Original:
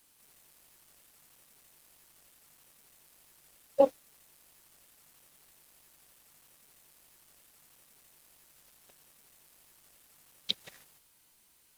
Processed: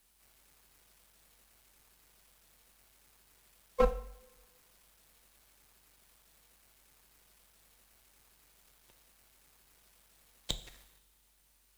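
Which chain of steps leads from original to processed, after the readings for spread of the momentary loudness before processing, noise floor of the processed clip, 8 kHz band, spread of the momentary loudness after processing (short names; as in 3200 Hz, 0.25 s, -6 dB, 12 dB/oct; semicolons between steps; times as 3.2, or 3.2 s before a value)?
14 LU, -69 dBFS, +1.0 dB, 23 LU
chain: half-wave rectifier; frequency shift -49 Hz; two-slope reverb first 0.54 s, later 1.7 s, DRR 9.5 dB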